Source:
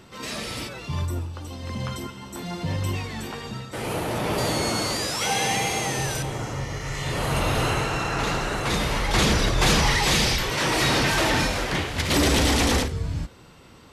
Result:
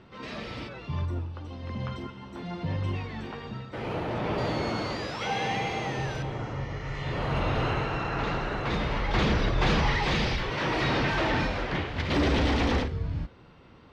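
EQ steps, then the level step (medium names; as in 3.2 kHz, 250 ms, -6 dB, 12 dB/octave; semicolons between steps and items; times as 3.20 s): distance through air 240 m; -3.0 dB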